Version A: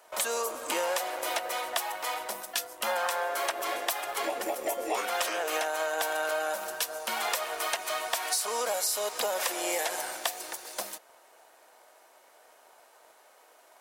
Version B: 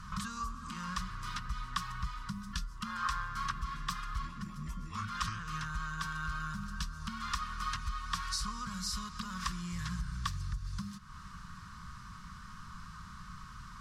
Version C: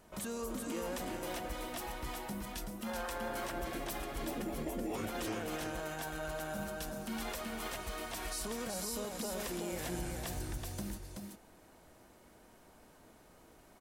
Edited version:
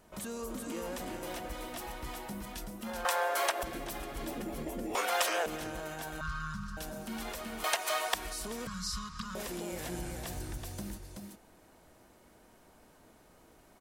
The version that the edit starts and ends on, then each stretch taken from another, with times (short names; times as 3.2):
C
3.05–3.63 from A
4.95–5.46 from A
6.21–6.77 from B
7.64–8.14 from A
8.67–9.35 from B